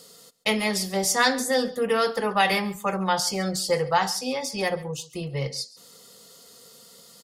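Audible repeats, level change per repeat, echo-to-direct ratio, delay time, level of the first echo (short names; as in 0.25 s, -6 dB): 1, no steady repeat, -20.0 dB, 0.138 s, -20.0 dB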